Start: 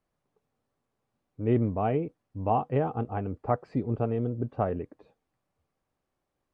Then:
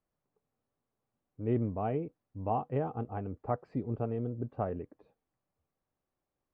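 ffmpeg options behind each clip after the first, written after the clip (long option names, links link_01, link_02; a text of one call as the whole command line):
ffmpeg -i in.wav -af "highshelf=frequency=2600:gain=-7,volume=-5.5dB" out.wav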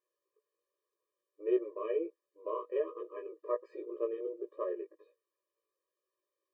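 ffmpeg -i in.wav -af "flanger=delay=16:depth=2.7:speed=1.3,afftfilt=real='re*eq(mod(floor(b*sr/1024/320),2),1)':imag='im*eq(mod(floor(b*sr/1024/320),2),1)':win_size=1024:overlap=0.75,volume=5.5dB" out.wav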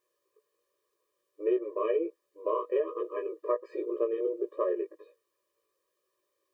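ffmpeg -i in.wav -af "acompressor=threshold=-33dB:ratio=6,volume=9dB" out.wav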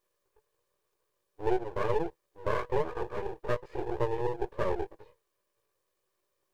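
ffmpeg -i in.wav -af "aeval=exprs='max(val(0),0)':channel_layout=same,volume=3.5dB" out.wav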